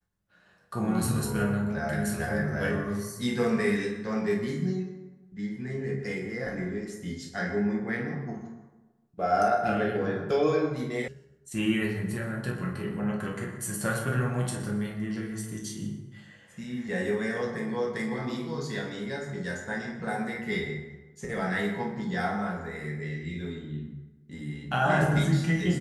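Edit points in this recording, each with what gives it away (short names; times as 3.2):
11.08 sound cut off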